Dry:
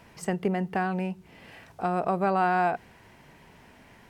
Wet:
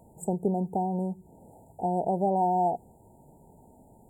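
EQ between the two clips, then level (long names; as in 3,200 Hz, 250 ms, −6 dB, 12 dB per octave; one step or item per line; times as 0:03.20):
linear-phase brick-wall band-stop 950–6,900 Hz
0.0 dB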